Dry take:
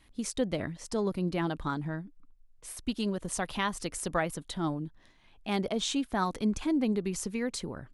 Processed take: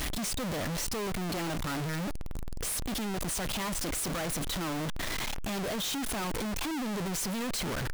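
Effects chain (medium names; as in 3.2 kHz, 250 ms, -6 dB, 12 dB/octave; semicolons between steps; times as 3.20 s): one-bit comparator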